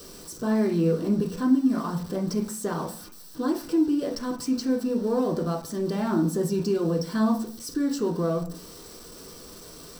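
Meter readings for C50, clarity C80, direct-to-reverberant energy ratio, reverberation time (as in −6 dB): 10.0 dB, 14.5 dB, 0.0 dB, 0.45 s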